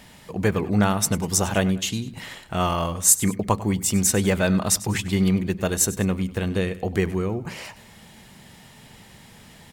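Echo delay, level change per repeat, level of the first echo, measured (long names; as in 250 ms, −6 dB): 98 ms, −7.5 dB, −17.0 dB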